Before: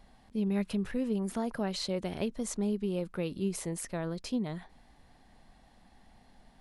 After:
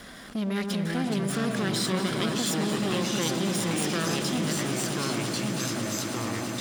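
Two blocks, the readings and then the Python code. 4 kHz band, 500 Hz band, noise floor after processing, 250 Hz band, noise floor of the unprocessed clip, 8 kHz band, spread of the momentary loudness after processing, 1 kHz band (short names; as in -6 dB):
+13.5 dB, +5.0 dB, -39 dBFS, +5.5 dB, -61 dBFS, +12.5 dB, 3 LU, +11.5 dB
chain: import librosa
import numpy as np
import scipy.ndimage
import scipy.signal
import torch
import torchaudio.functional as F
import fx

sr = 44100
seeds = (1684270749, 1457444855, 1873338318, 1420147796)

p1 = fx.lower_of_two(x, sr, delay_ms=0.56)
p2 = fx.level_steps(p1, sr, step_db=18)
p3 = p1 + F.gain(torch.from_numpy(p2), 2.0).numpy()
p4 = fx.echo_pitch(p3, sr, ms=289, semitones=-3, count=3, db_per_echo=-3.0)
p5 = fx.highpass(p4, sr, hz=350.0, slope=6)
p6 = fx.high_shelf(p5, sr, hz=8500.0, db=3.5)
p7 = fx.notch(p6, sr, hz=900.0, q=11.0)
p8 = fx.echo_swell(p7, sr, ms=110, loudest=8, wet_db=-17.0)
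p9 = fx.dynamic_eq(p8, sr, hz=4600.0, q=0.71, threshold_db=-52.0, ratio=4.0, max_db=7)
p10 = fx.echo_alternate(p9, sr, ms=113, hz=1400.0, feedback_pct=60, wet_db=-8)
p11 = fx.env_flatten(p10, sr, amount_pct=50)
y = F.gain(torch.from_numpy(p11), -1.0).numpy()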